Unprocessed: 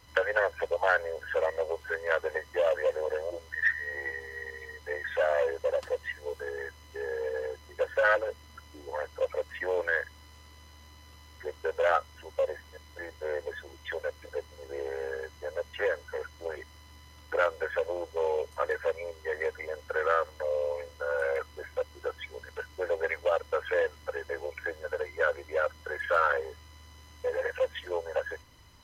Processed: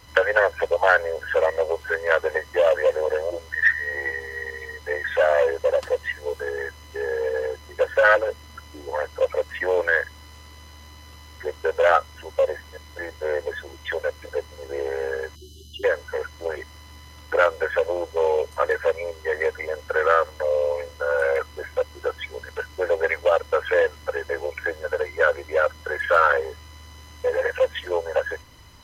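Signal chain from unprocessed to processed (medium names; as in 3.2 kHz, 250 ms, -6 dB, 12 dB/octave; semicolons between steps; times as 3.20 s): spectral selection erased 15.36–15.84 s, 400–2800 Hz; trim +8 dB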